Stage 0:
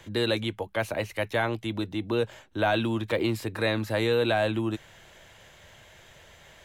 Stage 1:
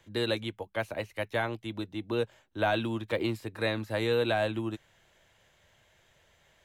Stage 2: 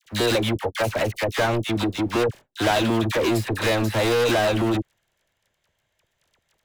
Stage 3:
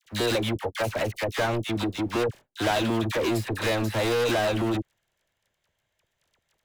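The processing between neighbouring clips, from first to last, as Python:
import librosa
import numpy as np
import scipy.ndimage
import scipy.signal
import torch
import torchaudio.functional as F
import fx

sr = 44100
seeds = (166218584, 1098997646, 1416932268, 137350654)

y1 = fx.upward_expand(x, sr, threshold_db=-42.0, expansion=1.5)
y1 = y1 * 10.0 ** (-2.0 / 20.0)
y2 = fx.leveller(y1, sr, passes=5)
y2 = fx.dispersion(y2, sr, late='lows', ms=54.0, hz=1100.0)
y3 = fx.quant_float(y2, sr, bits=8)
y3 = y3 * 10.0 ** (-4.0 / 20.0)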